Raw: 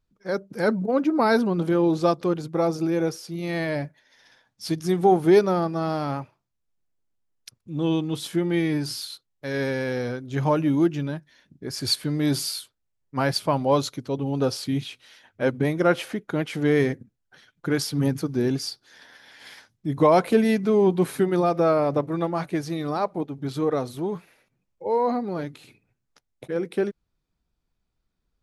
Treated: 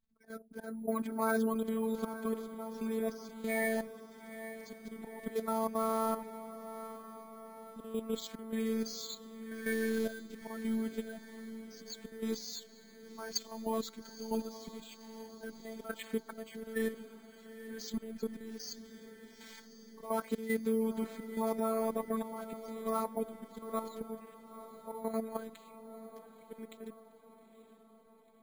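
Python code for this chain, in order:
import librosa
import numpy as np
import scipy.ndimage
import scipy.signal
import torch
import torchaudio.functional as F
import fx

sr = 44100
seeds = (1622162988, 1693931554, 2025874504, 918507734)

p1 = fx.spec_quant(x, sr, step_db=30)
p2 = scipy.signal.sosfilt(scipy.signal.butter(2, 6700.0, 'lowpass', fs=sr, output='sos'), p1)
p3 = fx.notch(p2, sr, hz=2800.0, q=7.5)
p4 = fx.rider(p3, sr, range_db=4, speed_s=0.5)
p5 = p3 + (p4 * librosa.db_to_amplitude(-1.5))
p6 = fx.auto_swell(p5, sr, attack_ms=292.0)
p7 = fx.level_steps(p6, sr, step_db=11)
p8 = fx.robotise(p7, sr, hz=223.0)
p9 = p8 + fx.echo_diffused(p8, sr, ms=897, feedback_pct=56, wet_db=-12.5, dry=0)
p10 = np.repeat(scipy.signal.resample_poly(p9, 1, 4), 4)[:len(p9)]
y = p10 * librosa.db_to_amplitude(-7.5)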